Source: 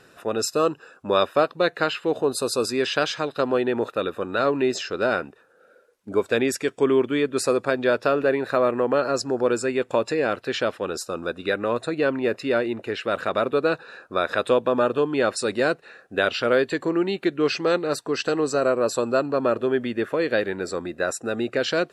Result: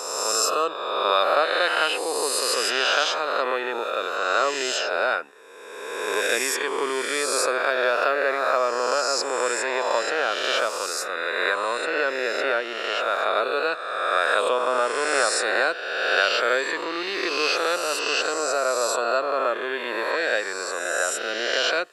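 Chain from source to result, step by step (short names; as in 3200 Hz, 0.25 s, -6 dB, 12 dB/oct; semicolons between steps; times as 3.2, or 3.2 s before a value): spectral swells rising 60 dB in 1.72 s; HPF 690 Hz 12 dB/oct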